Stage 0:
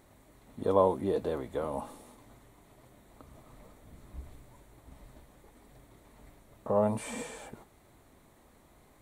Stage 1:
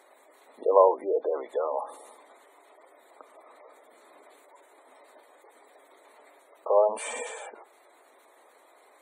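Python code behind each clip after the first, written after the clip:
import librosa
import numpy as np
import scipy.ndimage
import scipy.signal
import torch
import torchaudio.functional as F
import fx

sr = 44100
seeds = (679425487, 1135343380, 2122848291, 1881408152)

y = scipy.signal.sosfilt(scipy.signal.butter(4, 430.0, 'highpass', fs=sr, output='sos'), x)
y = fx.spec_gate(y, sr, threshold_db=-20, keep='strong')
y = y * 10.0 ** (7.0 / 20.0)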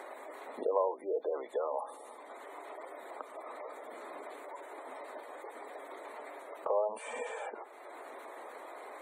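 y = fx.band_squash(x, sr, depth_pct=70)
y = y * 10.0 ** (-2.0 / 20.0)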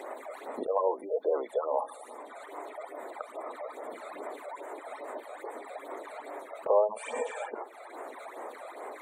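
y = fx.phaser_stages(x, sr, stages=12, low_hz=290.0, high_hz=4700.0, hz=2.4, feedback_pct=25)
y = y * 10.0 ** (6.5 / 20.0)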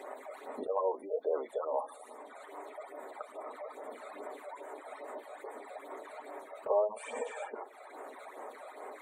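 y = fx.notch_comb(x, sr, f0_hz=170.0)
y = y * 10.0 ** (-3.0 / 20.0)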